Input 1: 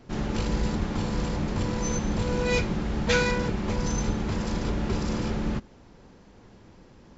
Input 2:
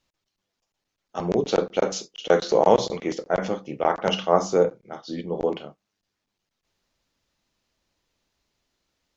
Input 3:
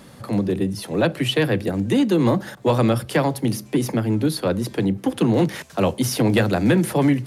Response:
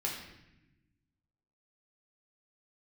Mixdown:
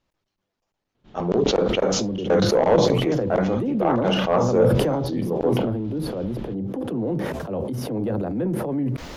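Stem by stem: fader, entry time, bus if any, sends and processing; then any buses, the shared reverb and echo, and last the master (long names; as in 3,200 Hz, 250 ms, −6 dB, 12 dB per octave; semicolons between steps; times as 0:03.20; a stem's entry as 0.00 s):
−14.0 dB, 0.95 s, no send, parametric band 3,400 Hz +14 dB 0.89 octaves; automatic ducking −9 dB, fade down 1.65 s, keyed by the second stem
+3.0 dB, 0.00 s, no send, soft clipping −13.5 dBFS, distortion −11 dB
−11.5 dB, 1.70 s, no send, octave-band graphic EQ 250/500/2,000/4,000/8,000 Hz +4/+6/−6/−5/−8 dB; transient designer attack −4 dB, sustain +9 dB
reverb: not used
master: high-shelf EQ 2,400 Hz −12 dB; level that may fall only so fast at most 25 dB per second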